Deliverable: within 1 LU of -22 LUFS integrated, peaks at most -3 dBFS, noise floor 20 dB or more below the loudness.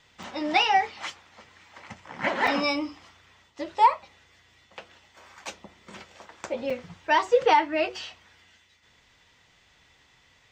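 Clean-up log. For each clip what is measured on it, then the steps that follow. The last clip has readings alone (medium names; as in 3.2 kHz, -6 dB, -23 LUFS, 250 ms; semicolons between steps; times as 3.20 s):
dropouts 3; longest dropout 4.0 ms; loudness -25.0 LUFS; peak level -8.0 dBFS; loudness target -22.0 LUFS
-> interpolate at 0.23/2.47/6.70 s, 4 ms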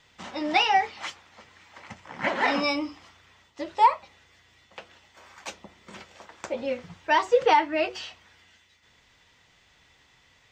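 dropouts 0; loudness -25.0 LUFS; peak level -8.0 dBFS; loudness target -22.0 LUFS
-> trim +3 dB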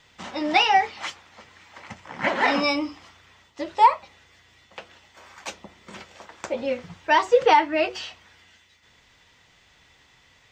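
loudness -22.0 LUFS; peak level -5.0 dBFS; noise floor -59 dBFS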